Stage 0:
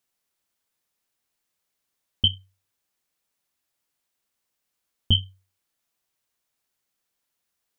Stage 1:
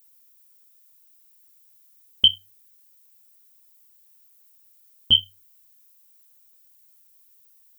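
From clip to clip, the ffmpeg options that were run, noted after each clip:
ffmpeg -i in.wav -af "aemphasis=mode=production:type=riaa,volume=1dB" out.wav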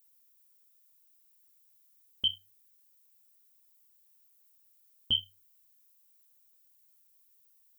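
ffmpeg -i in.wav -af "alimiter=limit=-9.5dB:level=0:latency=1:release=26,volume=-8.5dB" out.wav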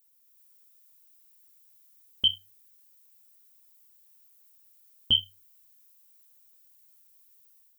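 ffmpeg -i in.wav -af "dynaudnorm=framelen=200:gausssize=3:maxgain=5.5dB" out.wav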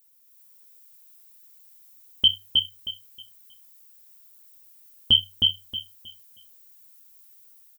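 ffmpeg -i in.wav -af "aecho=1:1:315|630|945|1260:0.708|0.177|0.0442|0.0111,volume=5dB" out.wav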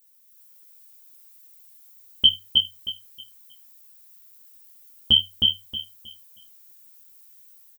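ffmpeg -i in.wav -filter_complex "[0:a]asplit=2[link_01][link_02];[link_02]adelay=14,volume=-3dB[link_03];[link_01][link_03]amix=inputs=2:normalize=0" out.wav

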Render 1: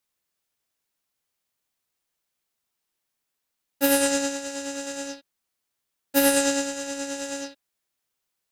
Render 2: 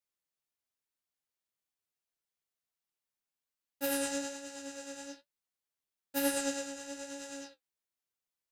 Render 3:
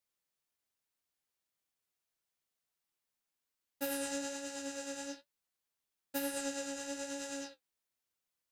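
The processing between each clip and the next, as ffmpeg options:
ffmpeg -i in.wav -af "flanger=delay=9.2:depth=6.5:regen=42:speed=1.1:shape=triangular,volume=-8dB" out.wav
ffmpeg -i in.wav -af "acompressor=threshold=-37dB:ratio=6,volume=2.5dB" out.wav

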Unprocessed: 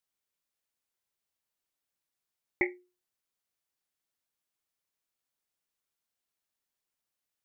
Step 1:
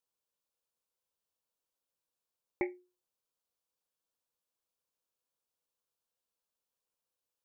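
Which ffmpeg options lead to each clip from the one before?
ffmpeg -i in.wav -af "equalizer=frequency=500:width_type=o:width=0.33:gain=10,equalizer=frequency=1000:width_type=o:width=0.33:gain=5,equalizer=frequency=2000:width_type=o:width=0.33:gain=-12,volume=-3.5dB" out.wav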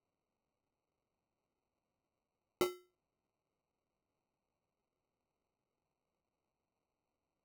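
ffmpeg -i in.wav -af "acrusher=samples=26:mix=1:aa=0.000001" out.wav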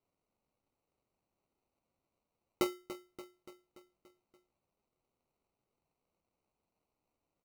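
ffmpeg -i in.wav -af "aecho=1:1:288|576|864|1152|1440|1728:0.224|0.128|0.0727|0.0415|0.0236|0.0135,volume=2.5dB" out.wav

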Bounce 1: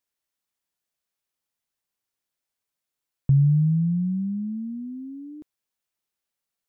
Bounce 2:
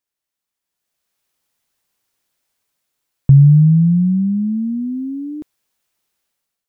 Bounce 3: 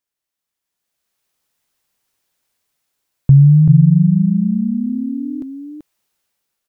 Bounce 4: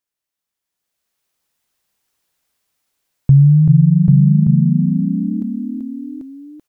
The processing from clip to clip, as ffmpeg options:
ffmpeg -i in.wav -af "dynaudnorm=framelen=620:gausssize=3:maxgain=13dB" out.wav
ffmpeg -i in.wav -af "aecho=1:1:385:0.562" out.wav
ffmpeg -i in.wav -af "aecho=1:1:790:0.668,volume=-1dB" out.wav

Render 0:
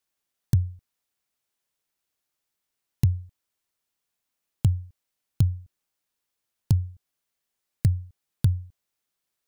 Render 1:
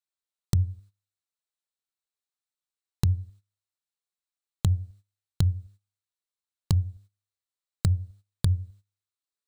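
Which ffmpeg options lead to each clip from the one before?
ffmpeg -i in.wav -af "bandreject=frequency=100.6:width_type=h:width=4,bandreject=frequency=201.2:width_type=h:width=4,bandreject=frequency=301.8:width_type=h:width=4,bandreject=frequency=402.4:width_type=h:width=4,bandreject=frequency=503:width_type=h:width=4,bandreject=frequency=603.6:width_type=h:width=4,bandreject=frequency=704.2:width_type=h:width=4,agate=range=-16dB:threshold=-50dB:ratio=16:detection=peak,equalizer=frequency=125:width_type=o:width=0.33:gain=-11,equalizer=frequency=250:width_type=o:width=0.33:gain=-10,equalizer=frequency=1250:width_type=o:width=0.33:gain=4,equalizer=frequency=4000:width_type=o:width=0.33:gain=8,equalizer=frequency=8000:width_type=o:width=0.33:gain=6,equalizer=frequency=16000:width_type=o:width=0.33:gain=-9,volume=2dB" out.wav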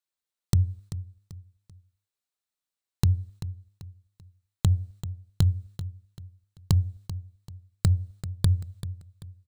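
ffmpeg -i in.wav -af "aecho=1:1:388|776|1164:0.224|0.0784|0.0274,volume=1.5dB" out.wav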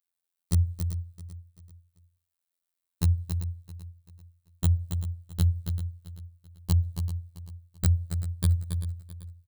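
ffmpeg -i in.wav -af "aexciter=amount=2.8:drive=2.5:freq=8600,aecho=1:1:276:0.422,afftfilt=real='hypot(re,im)*cos(PI*b)':imag='0':win_size=2048:overlap=0.75" out.wav

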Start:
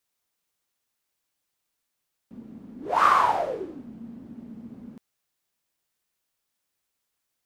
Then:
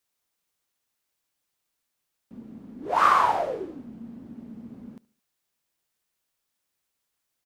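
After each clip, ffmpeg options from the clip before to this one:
ffmpeg -i in.wav -af "aecho=1:1:72|144|216:0.075|0.0345|0.0159" out.wav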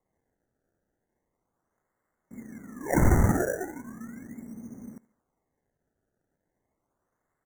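ffmpeg -i in.wav -af "acrusher=samples=28:mix=1:aa=0.000001:lfo=1:lforange=28:lforate=0.37,afftfilt=real='re*(1-between(b*sr/4096,2200,5700))':imag='im*(1-between(b*sr/4096,2200,5700))':win_size=4096:overlap=0.75" out.wav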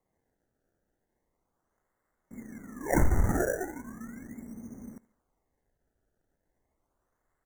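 ffmpeg -i in.wav -af "asubboost=boost=3.5:cutoff=69,acompressor=threshold=-18dB:ratio=12" out.wav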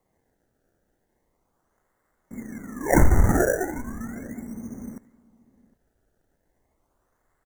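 ffmpeg -i in.wav -filter_complex "[0:a]asplit=2[link_01][link_02];[link_02]adelay=758,volume=-23dB,highshelf=frequency=4000:gain=-17.1[link_03];[link_01][link_03]amix=inputs=2:normalize=0,volume=7.5dB" out.wav

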